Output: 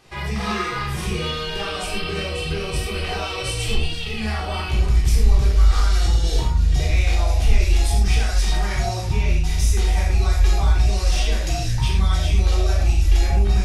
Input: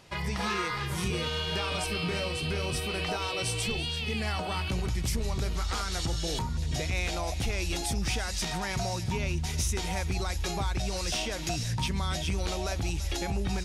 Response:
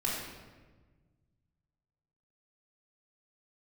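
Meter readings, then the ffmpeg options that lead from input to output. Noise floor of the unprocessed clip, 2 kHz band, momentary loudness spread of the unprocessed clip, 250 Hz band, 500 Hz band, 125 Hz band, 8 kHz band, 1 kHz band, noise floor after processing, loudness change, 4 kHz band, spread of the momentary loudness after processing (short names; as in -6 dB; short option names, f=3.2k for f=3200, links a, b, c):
-34 dBFS, +5.0 dB, 2 LU, +4.0 dB, +5.5 dB, +11.5 dB, +3.5 dB, +5.5 dB, -27 dBFS, +10.0 dB, +4.5 dB, 7 LU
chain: -filter_complex "[1:a]atrim=start_sample=2205,afade=t=out:st=0.18:d=0.01,atrim=end_sample=8379[a];[0:a][a]afir=irnorm=-1:irlink=0,asubboost=boost=7:cutoff=61"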